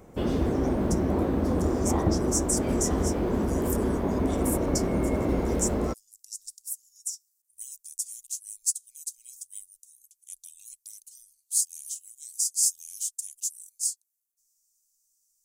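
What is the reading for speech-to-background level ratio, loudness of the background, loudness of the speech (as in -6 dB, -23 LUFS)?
-4.5 dB, -27.0 LUFS, -31.5 LUFS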